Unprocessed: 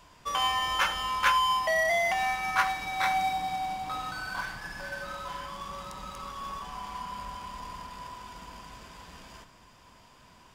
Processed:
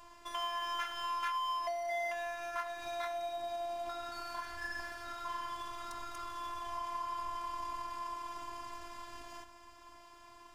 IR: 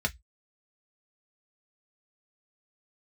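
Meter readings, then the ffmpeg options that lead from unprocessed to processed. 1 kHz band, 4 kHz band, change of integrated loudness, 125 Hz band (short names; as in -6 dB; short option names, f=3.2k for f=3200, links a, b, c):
-8.0 dB, -11.0 dB, -10.0 dB, -15.5 dB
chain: -filter_complex "[0:a]asplit=2[a][b];[1:a]atrim=start_sample=2205[c];[b][c]afir=irnorm=-1:irlink=0,volume=-18dB[d];[a][d]amix=inputs=2:normalize=0,acompressor=threshold=-36dB:ratio=5,afftfilt=real='hypot(re,im)*cos(PI*b)':imag='0':win_size=512:overlap=0.75,volume=2dB"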